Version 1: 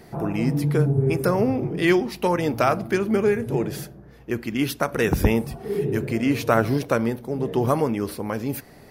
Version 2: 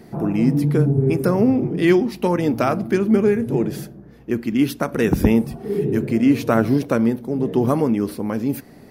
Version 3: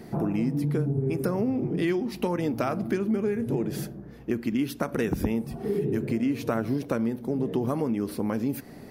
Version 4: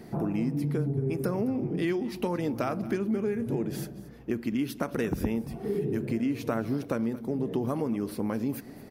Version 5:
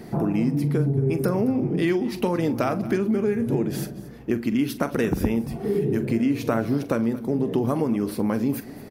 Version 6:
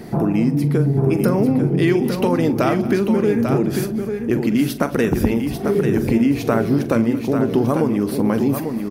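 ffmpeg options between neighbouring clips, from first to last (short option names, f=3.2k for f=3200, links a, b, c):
-af "equalizer=f=240:t=o:w=1.4:g=9,volume=-1.5dB"
-af "acompressor=threshold=-24dB:ratio=5"
-af "aecho=1:1:225:0.126,volume=-2.5dB"
-filter_complex "[0:a]asplit=2[a][b];[b]adelay=43,volume=-14dB[c];[a][c]amix=inputs=2:normalize=0,volume=6dB"
-af "aecho=1:1:844:0.473,volume=5dB"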